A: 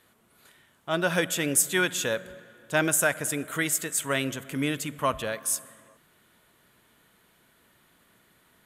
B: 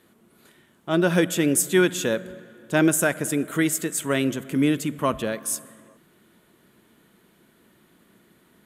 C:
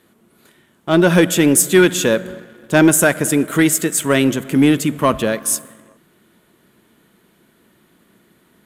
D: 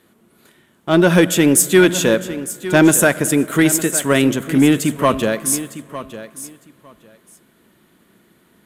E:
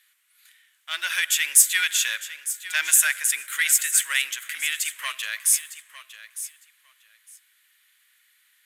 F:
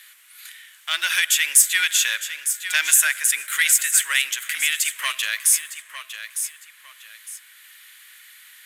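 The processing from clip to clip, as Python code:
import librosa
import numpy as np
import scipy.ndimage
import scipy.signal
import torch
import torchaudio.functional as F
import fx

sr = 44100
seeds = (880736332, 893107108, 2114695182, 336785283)

y1 = fx.small_body(x, sr, hz=(210.0, 330.0), ring_ms=25, db=10)
y2 = fx.leveller(y1, sr, passes=1)
y2 = y2 * librosa.db_to_amplitude(5.0)
y3 = fx.echo_feedback(y2, sr, ms=906, feedback_pct=17, wet_db=-14.0)
y4 = scipy.signal.sosfilt(scipy.signal.cheby1(3, 1.0, 1900.0, 'highpass', fs=sr, output='sos'), y3)
y5 = fx.band_squash(y4, sr, depth_pct=40)
y5 = y5 * librosa.db_to_amplitude(3.5)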